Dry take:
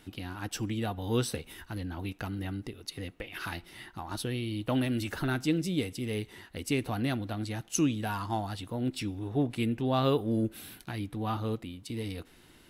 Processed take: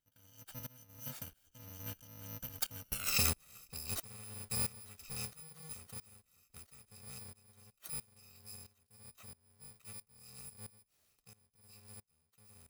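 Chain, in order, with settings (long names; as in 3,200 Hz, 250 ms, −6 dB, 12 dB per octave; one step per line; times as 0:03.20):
samples in bit-reversed order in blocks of 128 samples
source passing by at 0:03.01, 31 m/s, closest 5.1 metres
tremolo with a ramp in dB swelling 1.5 Hz, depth 20 dB
level +14.5 dB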